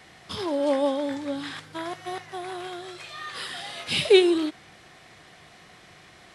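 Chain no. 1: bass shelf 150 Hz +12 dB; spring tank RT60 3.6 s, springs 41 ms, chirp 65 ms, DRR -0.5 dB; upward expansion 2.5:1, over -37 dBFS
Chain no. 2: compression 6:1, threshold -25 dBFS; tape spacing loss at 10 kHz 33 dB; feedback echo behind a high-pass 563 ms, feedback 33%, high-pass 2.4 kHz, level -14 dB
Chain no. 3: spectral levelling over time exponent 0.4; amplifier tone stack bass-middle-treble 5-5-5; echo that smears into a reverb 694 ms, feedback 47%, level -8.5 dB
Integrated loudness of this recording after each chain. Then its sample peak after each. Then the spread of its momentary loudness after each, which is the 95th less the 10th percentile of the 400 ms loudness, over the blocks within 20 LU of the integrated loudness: -23.5 LUFS, -35.0 LUFS, -33.0 LUFS; -3.5 dBFS, -18.5 dBFS, -14.5 dBFS; 23 LU, 24 LU, 8 LU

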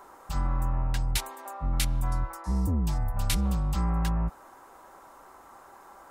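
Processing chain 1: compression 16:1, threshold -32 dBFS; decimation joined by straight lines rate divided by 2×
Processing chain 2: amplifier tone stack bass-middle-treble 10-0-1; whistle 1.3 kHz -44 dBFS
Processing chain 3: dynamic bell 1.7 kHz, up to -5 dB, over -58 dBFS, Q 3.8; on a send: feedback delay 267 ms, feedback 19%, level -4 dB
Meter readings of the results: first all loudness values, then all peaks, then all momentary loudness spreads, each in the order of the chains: -39.0 LUFS, -39.0 LUFS, -29.0 LUFS; -24.0 dBFS, -24.5 dBFS, -13.0 dBFS; 14 LU, 9 LU, 8 LU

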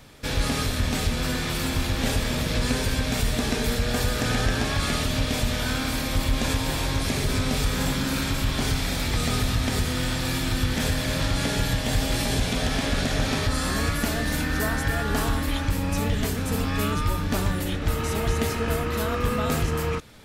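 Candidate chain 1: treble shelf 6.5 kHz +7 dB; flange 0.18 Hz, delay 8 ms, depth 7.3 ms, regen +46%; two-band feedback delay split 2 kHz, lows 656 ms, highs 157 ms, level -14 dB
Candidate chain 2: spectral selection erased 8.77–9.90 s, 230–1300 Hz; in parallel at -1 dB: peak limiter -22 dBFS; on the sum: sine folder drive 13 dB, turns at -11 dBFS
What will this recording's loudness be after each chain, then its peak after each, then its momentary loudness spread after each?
-28.0 LUFS, -13.0 LUFS; -14.0 dBFS, -9.0 dBFS; 2 LU, 1 LU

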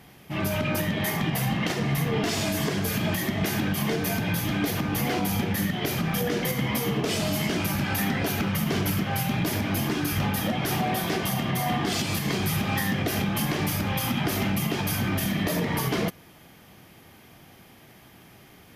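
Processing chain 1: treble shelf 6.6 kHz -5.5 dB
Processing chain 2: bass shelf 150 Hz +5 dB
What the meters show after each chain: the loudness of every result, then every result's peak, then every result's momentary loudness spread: -27.0 LUFS, -25.0 LUFS; -16.0 dBFS, -13.5 dBFS; 1 LU, 1 LU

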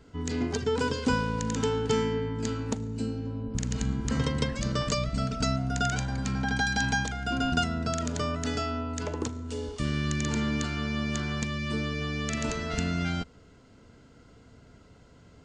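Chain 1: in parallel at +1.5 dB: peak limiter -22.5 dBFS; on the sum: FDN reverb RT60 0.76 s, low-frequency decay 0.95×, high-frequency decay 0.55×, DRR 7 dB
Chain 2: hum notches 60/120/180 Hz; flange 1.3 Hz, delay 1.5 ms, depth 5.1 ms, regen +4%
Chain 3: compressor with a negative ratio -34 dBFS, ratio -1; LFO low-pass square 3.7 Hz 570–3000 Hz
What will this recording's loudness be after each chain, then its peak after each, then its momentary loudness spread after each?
-23.0 LUFS, -33.5 LUFS, -33.5 LUFS; -8.5 dBFS, -15.5 dBFS, -17.5 dBFS; 4 LU, 7 LU, 19 LU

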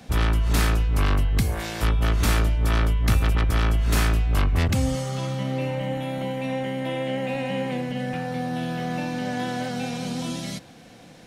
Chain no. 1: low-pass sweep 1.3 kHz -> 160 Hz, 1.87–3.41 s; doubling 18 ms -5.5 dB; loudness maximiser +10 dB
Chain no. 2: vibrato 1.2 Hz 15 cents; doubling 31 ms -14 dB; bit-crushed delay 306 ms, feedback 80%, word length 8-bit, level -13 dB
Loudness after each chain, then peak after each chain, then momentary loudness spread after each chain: -13.0 LUFS, -24.5 LUFS; -1.0 dBFS, -9.0 dBFS; 13 LU, 8 LU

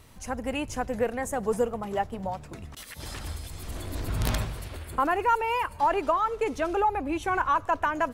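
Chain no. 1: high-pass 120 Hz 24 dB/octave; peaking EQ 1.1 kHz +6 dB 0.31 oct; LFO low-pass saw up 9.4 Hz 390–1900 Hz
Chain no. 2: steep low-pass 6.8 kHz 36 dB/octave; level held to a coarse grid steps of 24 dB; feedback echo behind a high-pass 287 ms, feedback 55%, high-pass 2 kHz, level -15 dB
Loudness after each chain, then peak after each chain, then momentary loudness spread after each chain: -22.5 LUFS, -32.0 LUFS; -3.5 dBFS, -14.0 dBFS; 19 LU, 21 LU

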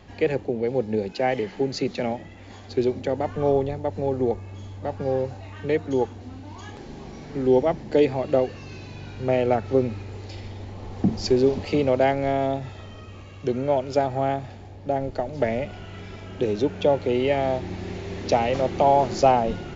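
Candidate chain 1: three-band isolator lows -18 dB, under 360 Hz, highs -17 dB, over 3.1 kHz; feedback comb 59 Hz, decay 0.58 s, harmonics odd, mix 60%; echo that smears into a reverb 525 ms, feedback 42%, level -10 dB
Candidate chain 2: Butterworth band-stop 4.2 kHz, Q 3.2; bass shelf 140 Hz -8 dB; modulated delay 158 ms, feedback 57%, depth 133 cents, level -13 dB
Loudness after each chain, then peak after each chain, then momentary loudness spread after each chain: -33.0 LUFS, -25.0 LUFS; -12.5 dBFS, -5.5 dBFS; 15 LU, 18 LU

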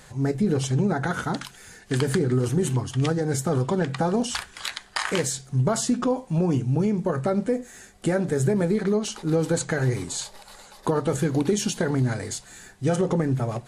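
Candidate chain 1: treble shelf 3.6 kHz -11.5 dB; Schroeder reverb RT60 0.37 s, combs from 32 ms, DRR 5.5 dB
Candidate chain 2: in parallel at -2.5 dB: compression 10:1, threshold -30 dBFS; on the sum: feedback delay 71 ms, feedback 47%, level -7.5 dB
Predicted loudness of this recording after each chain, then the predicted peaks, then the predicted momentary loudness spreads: -24.5 LUFS, -22.5 LUFS; -9.5 dBFS, -7.5 dBFS; 11 LU, 7 LU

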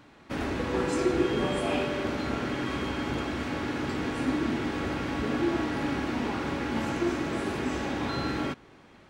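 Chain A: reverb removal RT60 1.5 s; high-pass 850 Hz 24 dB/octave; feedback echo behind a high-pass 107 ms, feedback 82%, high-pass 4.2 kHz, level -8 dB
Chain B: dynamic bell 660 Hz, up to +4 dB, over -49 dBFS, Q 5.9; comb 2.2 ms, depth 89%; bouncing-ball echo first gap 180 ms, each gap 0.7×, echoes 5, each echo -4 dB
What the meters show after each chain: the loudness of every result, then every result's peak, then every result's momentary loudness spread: -39.0 LUFS, -26.0 LUFS; -24.0 dBFS, -9.0 dBFS; 3 LU, 6 LU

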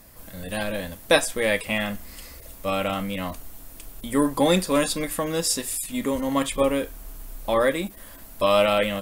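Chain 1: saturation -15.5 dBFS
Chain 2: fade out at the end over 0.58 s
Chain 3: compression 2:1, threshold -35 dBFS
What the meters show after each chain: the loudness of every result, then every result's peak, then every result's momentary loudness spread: -26.0 LUFS, -24.5 LUFS, -33.5 LUFS; -15.5 dBFS, -4.0 dBFS, -16.0 dBFS; 19 LU, 20 LU, 12 LU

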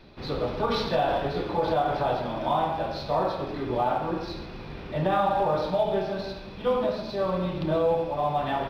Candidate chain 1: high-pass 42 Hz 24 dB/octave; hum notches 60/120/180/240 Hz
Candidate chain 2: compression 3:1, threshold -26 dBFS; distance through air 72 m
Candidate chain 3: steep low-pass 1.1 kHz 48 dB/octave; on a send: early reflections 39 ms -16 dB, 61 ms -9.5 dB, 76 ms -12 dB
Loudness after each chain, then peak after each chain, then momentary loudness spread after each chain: -27.5 LUFS, -31.0 LUFS, -26.5 LUFS; -13.0 dBFS, -16.0 dBFS, -12.5 dBFS; 9 LU, 6 LU, 9 LU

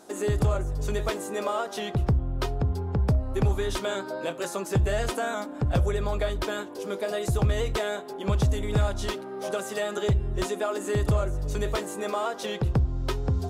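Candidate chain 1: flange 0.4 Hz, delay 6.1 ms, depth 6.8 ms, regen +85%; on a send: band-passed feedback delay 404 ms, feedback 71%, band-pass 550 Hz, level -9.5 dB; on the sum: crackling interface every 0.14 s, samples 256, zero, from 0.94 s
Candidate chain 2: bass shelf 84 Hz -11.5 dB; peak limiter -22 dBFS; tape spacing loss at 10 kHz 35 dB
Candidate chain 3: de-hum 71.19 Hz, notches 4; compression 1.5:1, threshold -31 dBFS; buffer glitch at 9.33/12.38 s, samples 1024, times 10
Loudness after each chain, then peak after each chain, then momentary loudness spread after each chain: -32.5 LUFS, -34.5 LUFS, -31.5 LUFS; -18.0 dBFS, -22.5 dBFS, -17.5 dBFS; 6 LU, 4 LU, 4 LU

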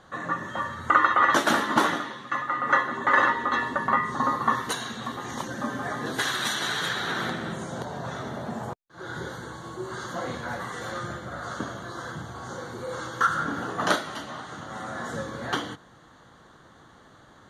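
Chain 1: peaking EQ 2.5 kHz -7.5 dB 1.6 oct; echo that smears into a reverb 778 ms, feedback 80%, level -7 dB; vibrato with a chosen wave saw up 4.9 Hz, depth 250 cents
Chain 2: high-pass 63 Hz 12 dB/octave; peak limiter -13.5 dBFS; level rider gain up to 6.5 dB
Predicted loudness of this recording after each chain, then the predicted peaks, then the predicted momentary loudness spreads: -29.0 LUFS, -22.5 LUFS; -6.5 dBFS, -7.0 dBFS; 11 LU, 13 LU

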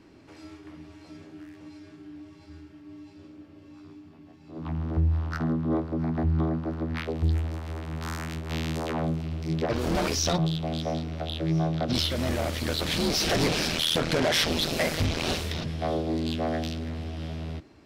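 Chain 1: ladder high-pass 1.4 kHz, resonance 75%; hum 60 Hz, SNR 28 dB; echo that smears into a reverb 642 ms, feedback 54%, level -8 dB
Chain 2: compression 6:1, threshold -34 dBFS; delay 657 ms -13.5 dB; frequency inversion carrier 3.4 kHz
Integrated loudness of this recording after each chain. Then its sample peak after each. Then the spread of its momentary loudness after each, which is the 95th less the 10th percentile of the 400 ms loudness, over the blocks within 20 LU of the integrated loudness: -39.0 LUFS, -33.5 LUFS; -19.5 dBFS, -22.5 dBFS; 18 LU, 12 LU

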